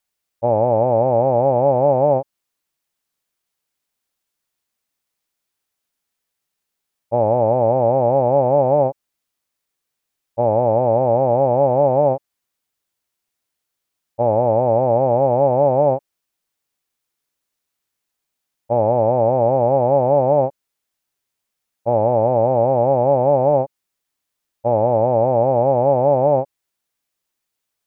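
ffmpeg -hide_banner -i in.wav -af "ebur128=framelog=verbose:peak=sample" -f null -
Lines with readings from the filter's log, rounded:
Integrated loudness:
  I:         -16.7 LUFS
  Threshold: -27.0 LUFS
Loudness range:
  LRA:         4.8 LU
  Threshold: -39.2 LUFS
  LRA low:   -22.7 LUFS
  LRA high:  -17.9 LUFS
Sample peak:
  Peak:       -5.5 dBFS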